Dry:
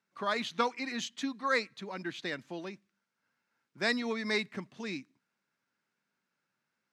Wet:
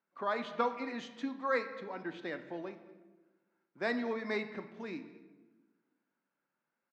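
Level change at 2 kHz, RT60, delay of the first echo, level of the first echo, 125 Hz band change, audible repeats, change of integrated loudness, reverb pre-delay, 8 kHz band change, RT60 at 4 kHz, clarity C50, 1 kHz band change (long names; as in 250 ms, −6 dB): −5.0 dB, 1.2 s, 218 ms, −21.0 dB, −5.5 dB, 1, −3.0 dB, 3 ms, below −15 dB, 0.80 s, 11.0 dB, −1.5 dB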